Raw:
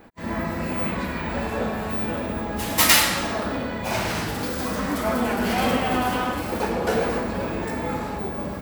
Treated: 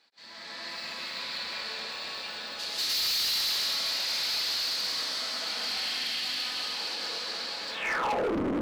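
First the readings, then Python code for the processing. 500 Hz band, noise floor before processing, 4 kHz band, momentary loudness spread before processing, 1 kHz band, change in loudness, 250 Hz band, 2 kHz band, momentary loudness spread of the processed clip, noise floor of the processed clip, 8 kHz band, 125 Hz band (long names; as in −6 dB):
−11.5 dB, −30 dBFS, +2.0 dB, 9 LU, −11.0 dB, −5.5 dB, −13.5 dB, −7.5 dB, 10 LU, −43 dBFS, −8.5 dB, below −15 dB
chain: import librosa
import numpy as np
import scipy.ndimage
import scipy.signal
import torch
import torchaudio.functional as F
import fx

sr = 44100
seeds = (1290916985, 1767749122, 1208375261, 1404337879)

p1 = fx.spec_erase(x, sr, start_s=5.68, length_s=0.56, low_hz=350.0, high_hz=1600.0)
p2 = fx.over_compress(p1, sr, threshold_db=-26.0, ratio=-1.0)
p3 = p1 + F.gain(torch.from_numpy(p2), 1.0).numpy()
p4 = fx.rev_plate(p3, sr, seeds[0], rt60_s=4.2, hf_ratio=0.85, predelay_ms=115, drr_db=-8.0)
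p5 = fx.filter_sweep_bandpass(p4, sr, from_hz=4400.0, to_hz=290.0, start_s=7.71, end_s=8.36, q=5.6)
p6 = np.clip(p5, -10.0 ** (-26.0 / 20.0), 10.0 ** (-26.0 / 20.0))
y = fx.doppler_dist(p6, sr, depth_ms=0.74)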